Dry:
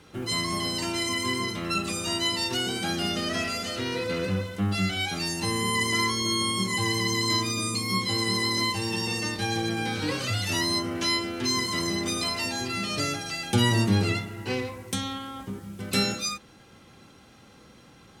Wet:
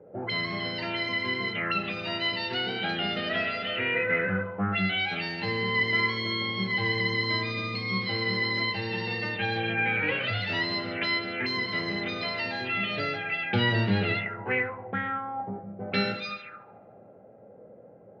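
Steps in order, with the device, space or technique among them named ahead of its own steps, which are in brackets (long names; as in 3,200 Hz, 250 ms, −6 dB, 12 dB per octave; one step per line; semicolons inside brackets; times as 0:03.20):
high-shelf EQ 2,800 Hz +3 dB
0:14.87–0:15.79: Butterworth low-pass 4,200 Hz
spectral tilt +3 dB per octave
feedback echo with a high-pass in the loop 73 ms, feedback 82%, high-pass 280 Hz, level −16 dB
envelope filter bass rig (envelope-controlled low-pass 520–4,500 Hz up, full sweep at −20.5 dBFS; loudspeaker in its box 74–2,100 Hz, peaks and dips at 110 Hz +8 dB, 190 Hz +6 dB, 310 Hz −3 dB, 440 Hz +5 dB, 640 Hz +4 dB, 1,100 Hz −8 dB)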